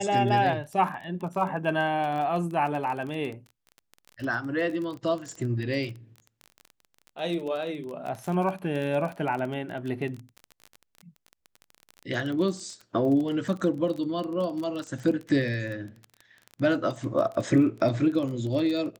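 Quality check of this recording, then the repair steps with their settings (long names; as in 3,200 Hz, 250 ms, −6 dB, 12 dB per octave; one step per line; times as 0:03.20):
surface crackle 24 per second −32 dBFS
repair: click removal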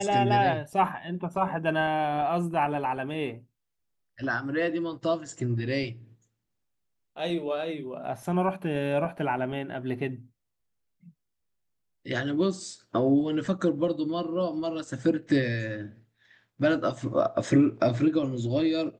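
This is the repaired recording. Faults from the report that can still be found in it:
none of them is left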